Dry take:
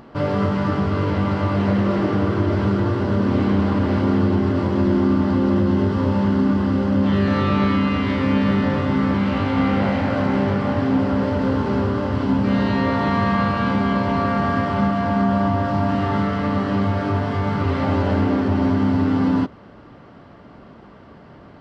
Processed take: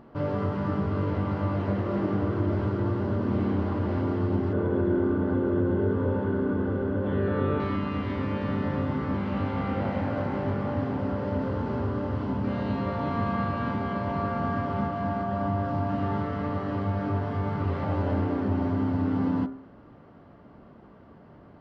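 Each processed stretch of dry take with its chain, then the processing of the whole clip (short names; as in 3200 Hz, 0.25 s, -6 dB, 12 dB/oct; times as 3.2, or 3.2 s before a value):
4.53–7.6 air absorption 310 m + small resonant body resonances 450/1500/3400 Hz, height 12 dB, ringing for 35 ms
whole clip: high shelf 2200 Hz -11.5 dB; de-hum 66.43 Hz, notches 36; gain -6 dB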